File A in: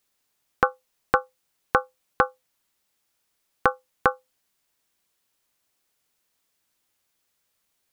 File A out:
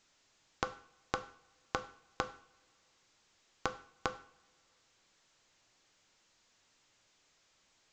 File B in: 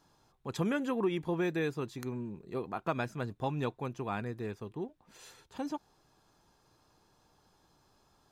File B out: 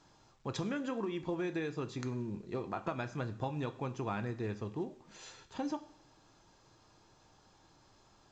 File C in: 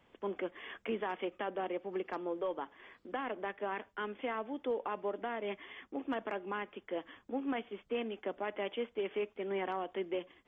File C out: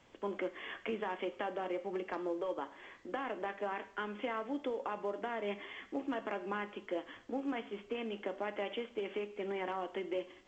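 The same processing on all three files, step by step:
compressor 12:1, threshold -35 dBFS; two-slope reverb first 0.5 s, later 2.3 s, from -25 dB, DRR 9 dB; gain +2 dB; A-law 128 kbps 16000 Hz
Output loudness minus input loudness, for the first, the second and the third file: -16.0, -3.0, -0.5 LU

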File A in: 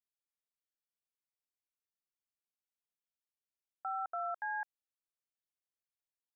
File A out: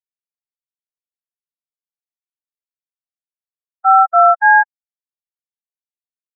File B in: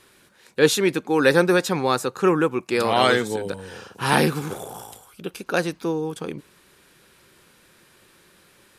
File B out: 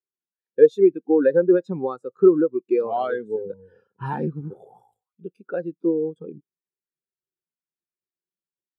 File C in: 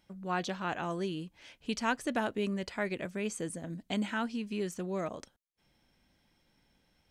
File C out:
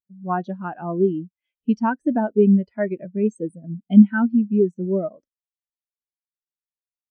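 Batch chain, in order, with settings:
compressor 2.5:1, threshold -28 dBFS; spectral expander 2.5:1; normalise peaks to -2 dBFS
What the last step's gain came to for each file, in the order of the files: +29.0, +9.0, +16.5 dB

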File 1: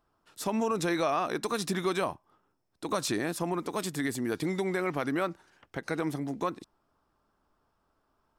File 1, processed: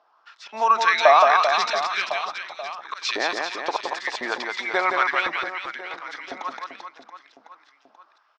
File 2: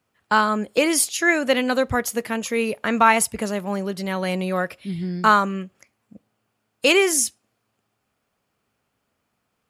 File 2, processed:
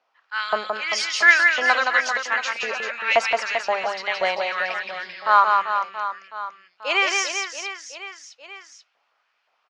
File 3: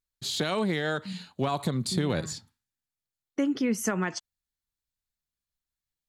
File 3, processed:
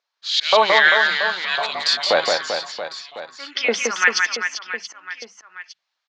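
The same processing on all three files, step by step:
auto swell 0.191 s; steep low-pass 5700 Hz 36 dB/oct; notches 50/100/150/200 Hz; LFO high-pass saw up 1.9 Hz 620–2900 Hz; reverse bouncing-ball echo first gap 0.17 s, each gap 1.3×, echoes 5; normalise peaks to -1.5 dBFS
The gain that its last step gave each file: +9.5, +2.0, +14.5 dB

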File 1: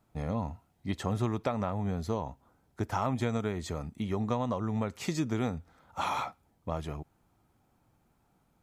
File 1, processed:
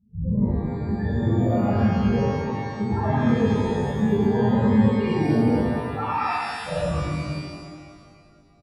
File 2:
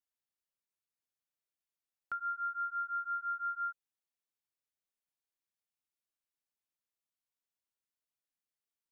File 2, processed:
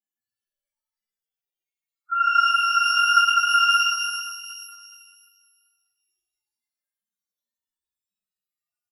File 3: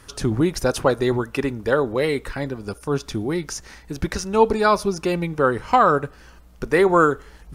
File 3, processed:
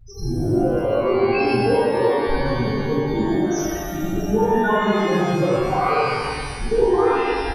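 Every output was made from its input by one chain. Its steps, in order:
phase scrambler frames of 50 ms; on a send: feedback echo 64 ms, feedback 38%, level -9 dB; on the sum: compressor 4:1, threshold -29 dBFS; loudest bins only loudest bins 4; shimmer reverb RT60 1.9 s, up +12 st, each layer -8 dB, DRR -10 dB; normalise peaks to -6 dBFS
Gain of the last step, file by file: +6.0, +8.5, +4.5 dB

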